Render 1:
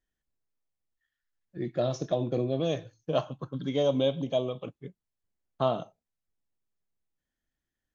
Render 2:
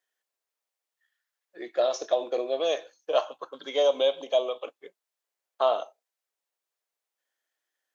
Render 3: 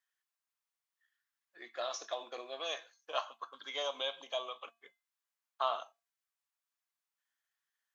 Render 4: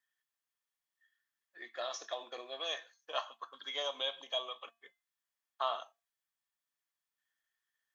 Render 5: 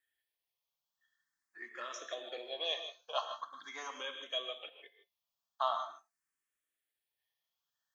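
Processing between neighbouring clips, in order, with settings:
high-pass filter 480 Hz 24 dB per octave; in parallel at −3 dB: brickwall limiter −22 dBFS, peak gain reduction 7.5 dB; on the sum: level +1.5 dB
low shelf with overshoot 760 Hz −10.5 dB, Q 1.5; tuned comb filter 230 Hz, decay 0.28 s, harmonics odd, mix 60%; level +2 dB
hollow resonant body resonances 1,800/3,300 Hz, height 10 dB, ringing for 40 ms; level −1.5 dB
reverb whose tail is shaped and stops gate 180 ms rising, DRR 8 dB; frequency shifter mixed with the dry sound +0.44 Hz; level +2.5 dB

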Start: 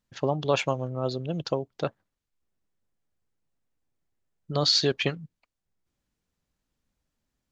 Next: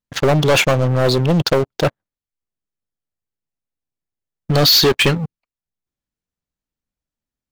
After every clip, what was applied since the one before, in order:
leveller curve on the samples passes 5
level +1 dB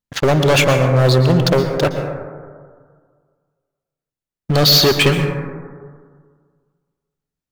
dense smooth reverb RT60 1.8 s, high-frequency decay 0.25×, pre-delay 105 ms, DRR 5.5 dB

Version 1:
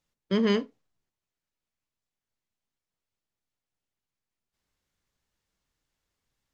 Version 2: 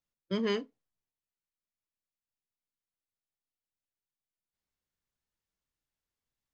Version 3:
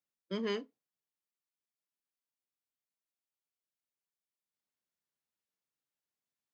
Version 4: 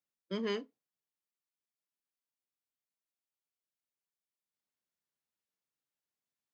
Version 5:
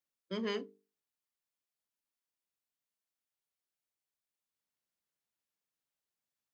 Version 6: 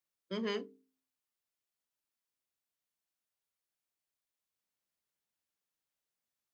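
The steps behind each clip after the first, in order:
noise reduction from a noise print of the clip's start 7 dB; level −4 dB
high-pass filter 170 Hz 12 dB per octave; level −4 dB
no processing that can be heard
mains-hum notches 50/100/150/200/250/300/350/400/450 Hz
hum removal 87.66 Hz, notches 3

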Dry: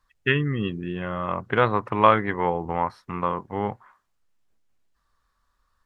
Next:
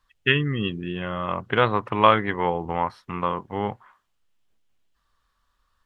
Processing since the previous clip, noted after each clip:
parametric band 3,100 Hz +7 dB 0.61 octaves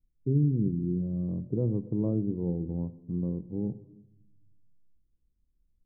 inverse Chebyshev low-pass filter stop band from 2,000 Hz, stop band 80 dB
rectangular room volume 3,000 cubic metres, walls furnished, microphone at 0.68 metres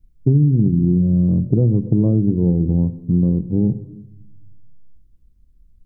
low-shelf EQ 290 Hz +11.5 dB
downward compressor, threshold −20 dBFS, peak gain reduction 8.5 dB
level +9 dB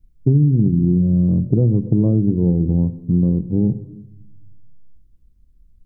no processing that can be heard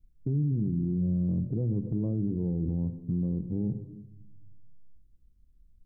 brickwall limiter −13.5 dBFS, peak gain reduction 10.5 dB
level −8 dB

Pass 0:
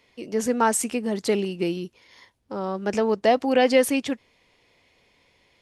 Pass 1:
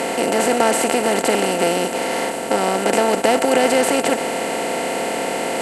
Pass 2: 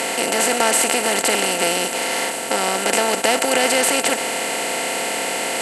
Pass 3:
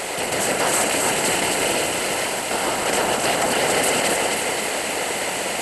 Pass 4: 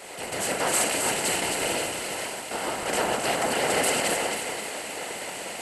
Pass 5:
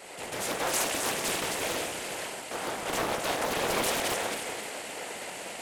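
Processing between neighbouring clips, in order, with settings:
compressor on every frequency bin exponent 0.2; level −2.5 dB
tilt shelving filter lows −6 dB, about 1,200 Hz
random phases in short frames; delay that swaps between a low-pass and a high-pass 133 ms, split 1,900 Hz, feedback 81%, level −2 dB; level −4.5 dB
multiband upward and downward expander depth 100%; level −5.5 dB
highs frequency-modulated by the lows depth 0.78 ms; level −4 dB

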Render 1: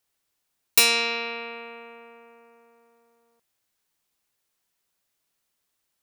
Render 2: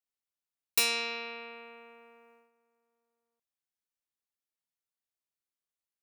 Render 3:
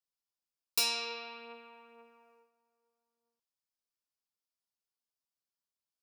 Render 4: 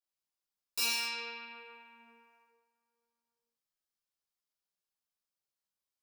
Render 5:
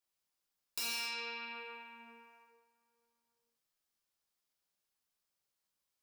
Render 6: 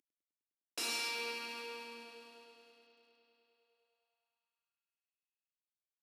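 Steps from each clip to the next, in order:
noise gate −52 dBFS, range −10 dB; level −9 dB
thirty-one-band graphic EQ 1,000 Hz +4 dB, 2,000 Hz −10 dB, 5,000 Hz +8 dB; flanger 0.57 Hz, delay 7.3 ms, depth 4.6 ms, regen +45%
reverb whose tail is shaped and stops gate 290 ms falling, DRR −8 dB; level −9 dB
gain into a clipping stage and back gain 31.5 dB; downward compressor 2.5 to 1, threshold −45 dBFS, peak gain reduction 8 dB; level +4.5 dB
variable-slope delta modulation 64 kbit/s; bucket-brigade delay 102 ms, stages 4,096, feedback 83%, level −8.5 dB; high-pass filter sweep 300 Hz → 3,300 Hz, 0:03.39–0:05.65

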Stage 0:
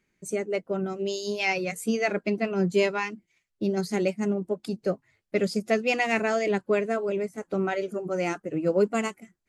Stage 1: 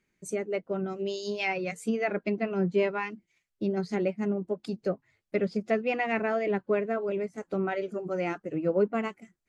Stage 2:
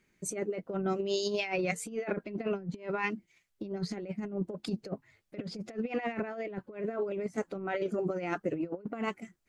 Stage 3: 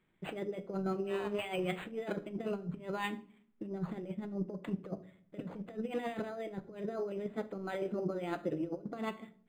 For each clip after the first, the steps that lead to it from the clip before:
treble cut that deepens with the level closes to 2,200 Hz, closed at −21.5 dBFS; level −2.5 dB
compressor whose output falls as the input rises −33 dBFS, ratio −0.5
convolution reverb RT60 0.55 s, pre-delay 6 ms, DRR 10 dB; linearly interpolated sample-rate reduction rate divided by 8×; level −3.5 dB

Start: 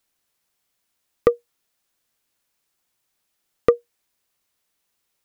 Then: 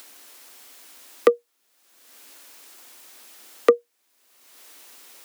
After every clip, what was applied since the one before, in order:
Butterworth high-pass 230 Hz 96 dB per octave
in parallel at −0.5 dB: upward compression, threshold −17 dBFS
on the sum: level −5 dB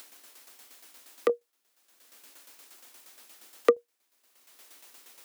shaped tremolo saw down 8.5 Hz, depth 65%
level −2.5 dB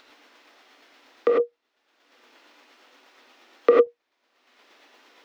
high-frequency loss of the air 240 metres
reverb whose tail is shaped and stops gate 120 ms rising, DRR −2.5 dB
level +3 dB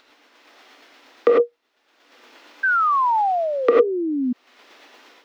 sound drawn into the spectrogram fall, 0:02.63–0:04.33, 240–1,600 Hz −25 dBFS
automatic gain control gain up to 8.5 dB
level −1.5 dB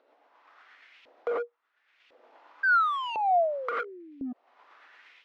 hard clipping −18.5 dBFS, distortion −8 dB
auto-filter band-pass saw up 0.95 Hz 500–2,800 Hz

